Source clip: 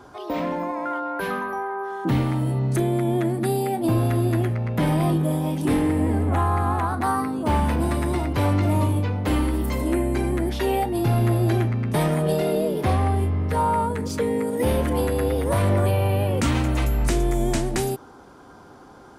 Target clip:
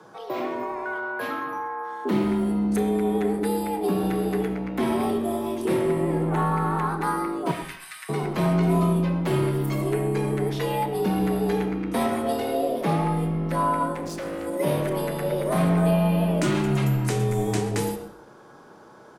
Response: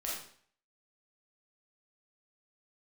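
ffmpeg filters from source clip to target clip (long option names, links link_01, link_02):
-filter_complex "[0:a]asettb=1/sr,asplit=3[link_01][link_02][link_03];[link_01]atrim=end=7.514[link_04];[link_02]atrim=start=7.51:end=8.09,asetpts=PTS-STARTPTS,afade=type=in:duration=0.004:curve=qsin,afade=type=out:start_time=0.576:duration=0.004:curve=qsin,highpass=frequency=1500:width=0.5412,highpass=frequency=1500:width=1.3066[link_05];[link_03]atrim=start=8.086[link_06];[link_04][link_05]acrossfade=duration=0.004:curve1=hsin:curve2=qsin[link_07];[link_07][link_06]acrossfade=duration=0.004:curve1=qsin:curve2=hsin,asettb=1/sr,asplit=3[link_08][link_09][link_10];[link_08]atrim=end=13.944[link_11];[link_09]atrim=start=13.94:end=14.47,asetpts=PTS-STARTPTS,afade=type=in:duration=0.004:curve=qsin,afade=type=out:start_time=0.526:duration=0.004:curve=qsin,asoftclip=type=hard:threshold=-27.5dB[link_12];[link_10]atrim=start=14.466[link_13];[link_11][link_12]acrossfade=duration=0.004:curve1=hsin:curve2=qsin[link_14];[link_14][link_13]acrossfade=duration=0.004:curve1=qsin:curve2=hsin,afreqshift=75,asplit=3[link_15][link_16][link_17];[link_16]adelay=127,afreqshift=-130,volume=-20dB[link_18];[link_17]adelay=254,afreqshift=-260,volume=-30.5dB[link_19];[link_15][link_18][link_19]amix=inputs=3:normalize=0,asplit=2[link_20][link_21];[1:a]atrim=start_sample=2205,highshelf=frequency=4200:gain=-9.5,adelay=29[link_22];[link_21][link_22]afir=irnorm=-1:irlink=0,volume=-7.5dB[link_23];[link_20][link_23]amix=inputs=2:normalize=0,volume=-3dB"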